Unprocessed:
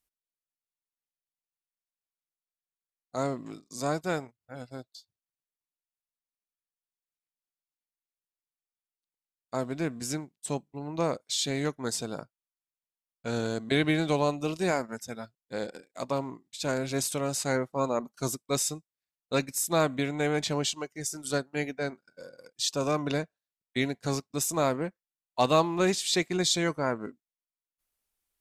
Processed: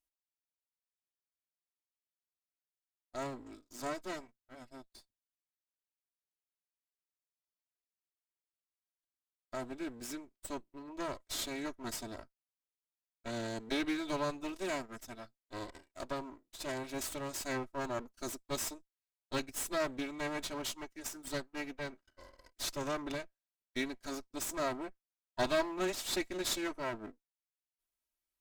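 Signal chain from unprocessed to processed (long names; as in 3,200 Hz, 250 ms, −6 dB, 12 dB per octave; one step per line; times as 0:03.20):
lower of the sound and its delayed copy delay 3.1 ms
level −7 dB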